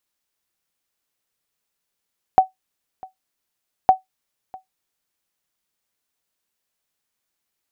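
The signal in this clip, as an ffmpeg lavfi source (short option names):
-f lavfi -i "aevalsrc='0.708*(sin(2*PI*755*mod(t,1.51))*exp(-6.91*mod(t,1.51)/0.14)+0.0596*sin(2*PI*755*max(mod(t,1.51)-0.65,0))*exp(-6.91*max(mod(t,1.51)-0.65,0)/0.14))':d=3.02:s=44100"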